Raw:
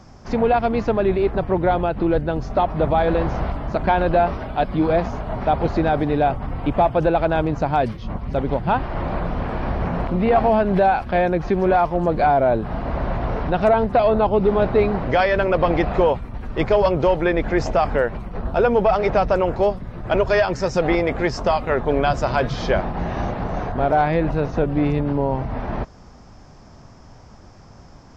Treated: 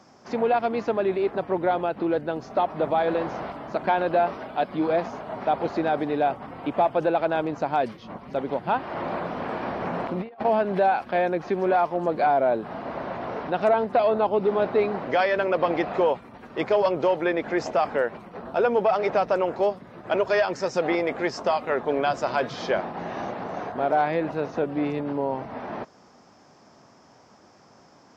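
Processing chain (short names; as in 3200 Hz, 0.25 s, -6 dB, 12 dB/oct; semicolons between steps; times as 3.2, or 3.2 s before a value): HPF 250 Hz 12 dB/oct; 8.87–10.45 negative-ratio compressor -25 dBFS, ratio -0.5; gain -4 dB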